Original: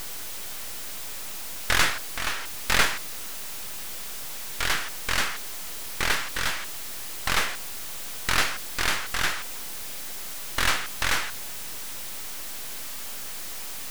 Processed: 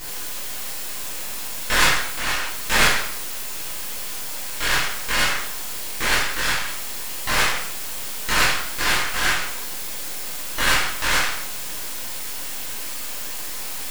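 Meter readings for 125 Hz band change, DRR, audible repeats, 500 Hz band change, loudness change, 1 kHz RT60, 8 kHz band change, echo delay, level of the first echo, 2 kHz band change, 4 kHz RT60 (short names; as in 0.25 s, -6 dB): +4.0 dB, -9.5 dB, none, +6.0 dB, +5.5 dB, 0.60 s, +5.5 dB, none, none, +5.5 dB, 0.60 s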